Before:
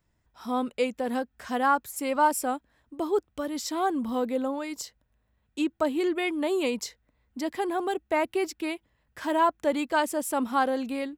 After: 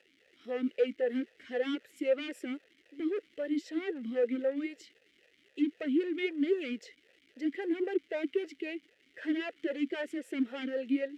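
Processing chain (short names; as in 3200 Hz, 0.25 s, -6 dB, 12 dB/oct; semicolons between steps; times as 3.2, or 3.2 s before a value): hard clip -26 dBFS, distortion -8 dB; crackle 530/s -41 dBFS; dynamic EQ 1300 Hz, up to +6 dB, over -45 dBFS, Q 1.6; vowel sweep e-i 3.8 Hz; gain +6 dB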